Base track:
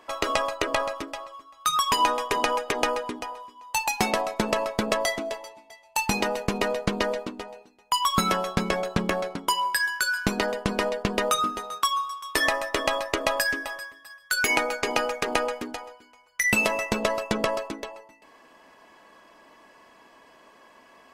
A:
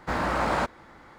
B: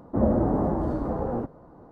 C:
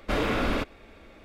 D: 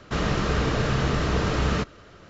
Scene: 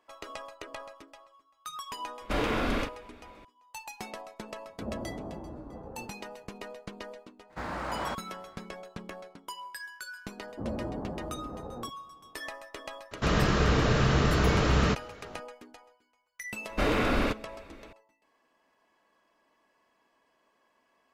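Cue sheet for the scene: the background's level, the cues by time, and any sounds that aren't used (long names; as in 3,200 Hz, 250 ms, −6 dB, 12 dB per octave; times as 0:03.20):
base track −17 dB
0:02.21: mix in C −3.5 dB + double-tracking delay 41 ms −6 dB
0:04.65: mix in B −16 dB
0:07.49: mix in A −9 dB, fades 0.02 s
0:10.44: mix in B −13 dB
0:13.11: mix in D −0.5 dB
0:16.69: mix in C + notch filter 3,300 Hz, Q 20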